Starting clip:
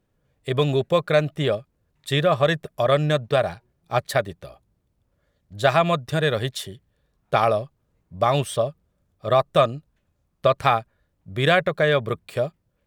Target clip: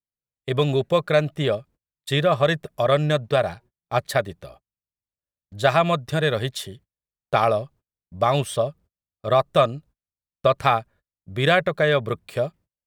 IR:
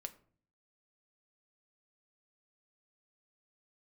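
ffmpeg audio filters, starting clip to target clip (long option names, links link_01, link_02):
-af "agate=range=-32dB:threshold=-47dB:ratio=16:detection=peak"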